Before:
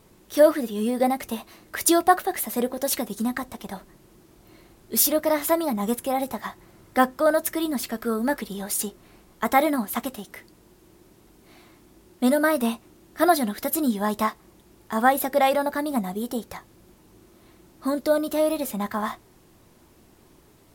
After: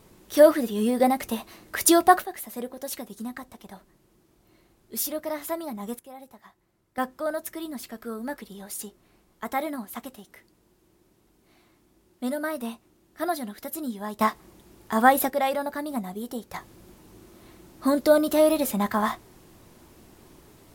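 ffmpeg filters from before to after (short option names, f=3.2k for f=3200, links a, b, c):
-af "asetnsamples=n=441:p=0,asendcmd='2.24 volume volume -9dB;5.99 volume volume -19dB;6.98 volume volume -9dB;14.21 volume volume 1.5dB;15.3 volume volume -5dB;16.54 volume volume 3dB',volume=1dB"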